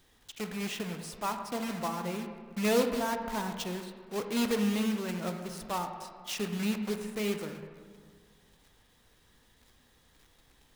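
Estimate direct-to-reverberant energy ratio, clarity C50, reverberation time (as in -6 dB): 6.0 dB, 7.0 dB, 1.9 s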